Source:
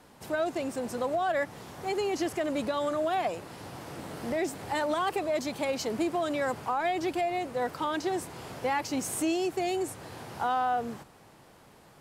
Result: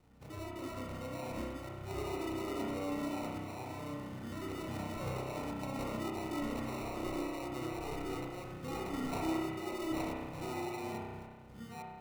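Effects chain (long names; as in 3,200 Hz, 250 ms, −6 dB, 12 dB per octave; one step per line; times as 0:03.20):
delay that plays each chunk backwards 563 ms, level −1 dB
gate on every frequency bin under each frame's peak −25 dB strong
guitar amp tone stack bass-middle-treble 6-0-2
decimation without filtering 27×
convolution reverb RT60 1.5 s, pre-delay 31 ms, DRR −2 dB
level +9 dB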